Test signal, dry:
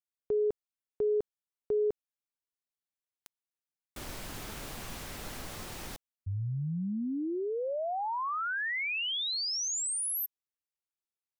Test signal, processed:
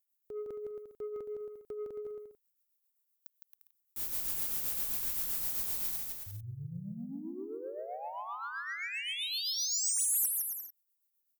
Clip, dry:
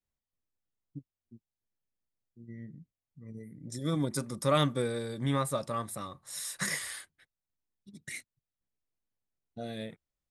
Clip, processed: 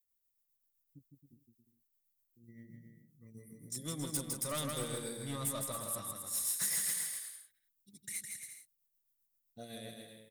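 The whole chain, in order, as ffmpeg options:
-filter_complex "[0:a]aemphasis=mode=production:type=75fm,tremolo=f=7.7:d=0.55,asoftclip=type=tanh:threshold=0.0422,crystalizer=i=0.5:c=0,asplit=2[s0][s1];[s1]aecho=0:1:160|272|350.4|405.3|443.7:0.631|0.398|0.251|0.158|0.1[s2];[s0][s2]amix=inputs=2:normalize=0,volume=0.473"

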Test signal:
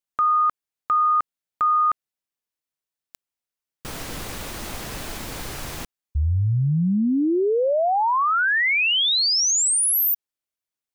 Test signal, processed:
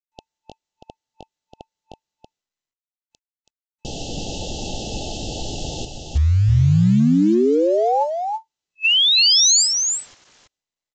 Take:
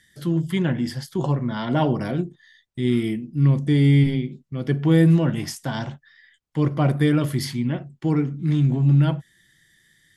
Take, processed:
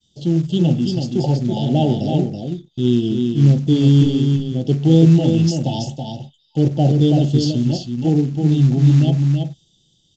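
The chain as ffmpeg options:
-af "agate=range=0.0224:threshold=0.00178:ratio=3:release=413:detection=peak,adynamicequalizer=threshold=0.0224:dfrequency=670:dqfactor=0.77:tfrequency=670:tqfactor=0.77:attack=5:release=100:ratio=0.4:range=2:mode=cutabove:tftype=bell,afftfilt=real='re*(1-between(b*sr/4096,890,2600))':imag='im*(1-between(b*sr/4096,890,2600))':win_size=4096:overlap=0.75,acrusher=bits=7:mode=log:mix=0:aa=0.000001,aecho=1:1:328:0.562,volume=1.78" -ar 16000 -c:a sbc -b:a 192k

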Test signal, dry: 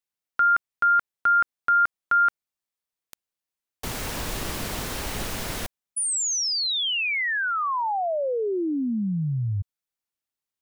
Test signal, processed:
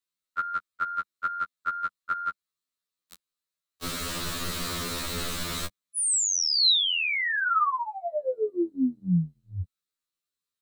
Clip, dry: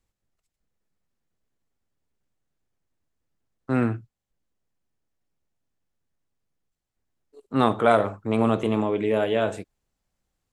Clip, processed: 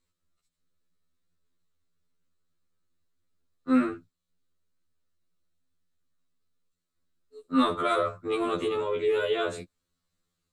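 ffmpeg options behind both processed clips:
-filter_complex "[0:a]acrossover=split=210|2700[s0][s1][s2];[s1]acompressor=threshold=0.0794:ratio=6:attack=7.7:release=38:knee=2.83:detection=peak[s3];[s0][s3][s2]amix=inputs=3:normalize=0,equalizer=f=125:t=o:w=0.33:g=-7,equalizer=f=200:t=o:w=0.33:g=6,equalizer=f=800:t=o:w=0.33:g=-11,equalizer=f=1250:t=o:w=0.33:g=7,equalizer=f=4000:t=o:w=0.33:g=9,equalizer=f=8000:t=o:w=0.33:g=4,afftfilt=real='re*2*eq(mod(b,4),0)':imag='im*2*eq(mod(b,4),0)':win_size=2048:overlap=0.75"

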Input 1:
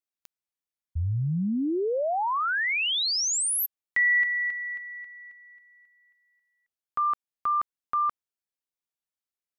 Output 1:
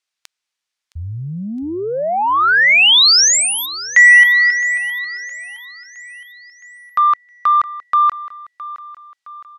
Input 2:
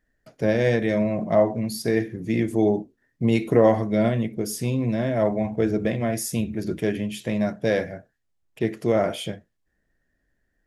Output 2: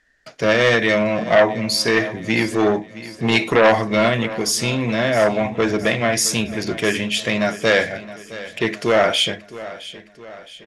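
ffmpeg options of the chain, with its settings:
-filter_complex "[0:a]lowpass=6000,aeval=exprs='0.531*(cos(1*acos(clip(val(0)/0.531,-1,1)))-cos(1*PI/2))+0.0944*(cos(5*acos(clip(val(0)/0.531,-1,1)))-cos(5*PI/2))':c=same,tiltshelf=f=770:g=-9,asplit=2[s0][s1];[s1]aecho=0:1:665|1330|1995|2660|3325:0.15|0.0763|0.0389|0.0198|0.0101[s2];[s0][s2]amix=inputs=2:normalize=0,volume=1.58"

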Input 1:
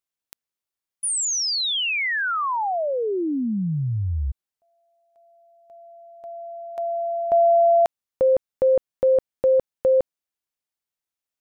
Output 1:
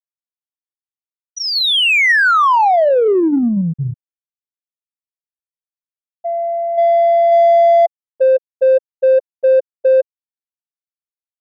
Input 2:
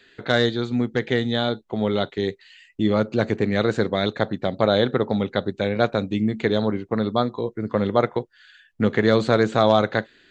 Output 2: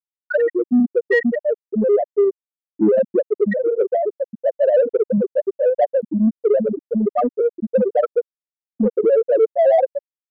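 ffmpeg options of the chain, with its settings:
-filter_complex "[0:a]adynamicequalizer=threshold=0.00501:dfrequency=6300:dqfactor=2.7:tfrequency=6300:tqfactor=2.7:attack=5:release=100:ratio=0.375:range=2:mode=cutabove:tftype=bell,bandreject=f=152.8:t=h:w=4,bandreject=f=305.6:t=h:w=4,bandreject=f=458.4:t=h:w=4,bandreject=f=611.2:t=h:w=4,bandreject=f=764:t=h:w=4,bandreject=f=916.8:t=h:w=4,bandreject=f=1069.6:t=h:w=4,bandreject=f=1222.4:t=h:w=4,bandreject=f=1375.2:t=h:w=4,bandreject=f=1528:t=h:w=4,bandreject=f=1680.8:t=h:w=4,asplit=2[s0][s1];[s1]highpass=f=720:p=1,volume=25.1,asoftclip=type=tanh:threshold=0.708[s2];[s0][s2]amix=inputs=2:normalize=0,lowpass=f=3400:p=1,volume=0.501,aeval=exprs='val(0)+0.126*sin(2*PI*1900*n/s)':c=same,asplit=2[s3][s4];[s4]adelay=463,lowpass=f=990:p=1,volume=0.1,asplit=2[s5][s6];[s6]adelay=463,lowpass=f=990:p=1,volume=0.43,asplit=2[s7][s8];[s8]adelay=463,lowpass=f=990:p=1,volume=0.43[s9];[s5][s7][s9]amix=inputs=3:normalize=0[s10];[s3][s10]amix=inputs=2:normalize=0,afftfilt=real='re*gte(hypot(re,im),1.78)':imag='im*gte(hypot(re,im),1.78)':win_size=1024:overlap=0.75,asplit=2[s11][s12];[s12]asoftclip=type=tanh:threshold=0.168,volume=0.531[s13];[s11][s13]amix=inputs=2:normalize=0,volume=0.75"

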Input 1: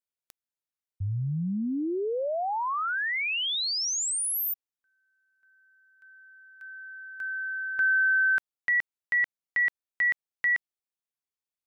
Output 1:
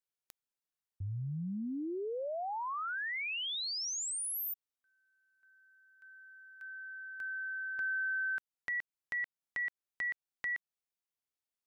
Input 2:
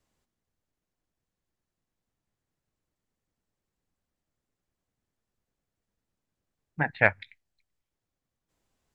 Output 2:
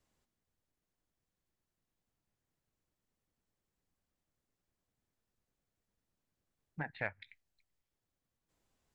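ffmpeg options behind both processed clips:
-af "acompressor=threshold=0.0126:ratio=2:attack=1.4:release=307:knee=6:detection=peak,volume=0.75"

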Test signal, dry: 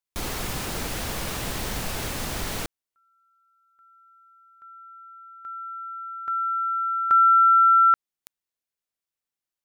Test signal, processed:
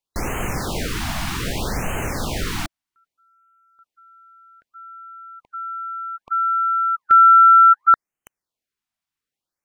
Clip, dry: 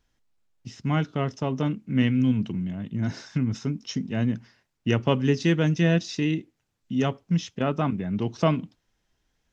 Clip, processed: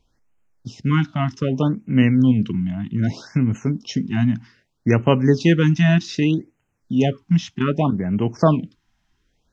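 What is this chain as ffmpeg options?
-af "highshelf=f=6300:g=-9,afftfilt=real='re*(1-between(b*sr/1024,420*pow(4500/420,0.5+0.5*sin(2*PI*0.64*pts/sr))/1.41,420*pow(4500/420,0.5+0.5*sin(2*PI*0.64*pts/sr))*1.41))':imag='im*(1-between(b*sr/1024,420*pow(4500/420,0.5+0.5*sin(2*PI*0.64*pts/sr))/1.41,420*pow(4500/420,0.5+0.5*sin(2*PI*0.64*pts/sr))*1.41))':win_size=1024:overlap=0.75,volume=2.11"

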